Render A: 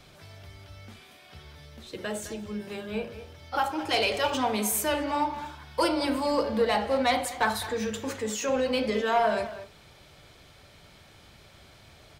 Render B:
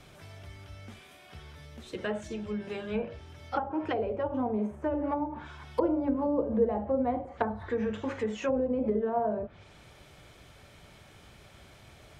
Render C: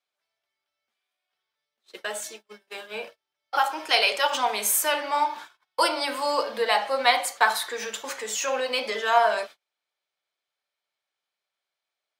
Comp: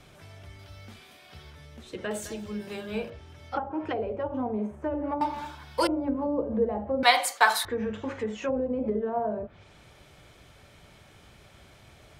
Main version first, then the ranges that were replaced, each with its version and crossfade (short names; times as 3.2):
B
0.59–1.5 from A
2.11–3.1 from A
5.21–5.87 from A
7.03–7.65 from C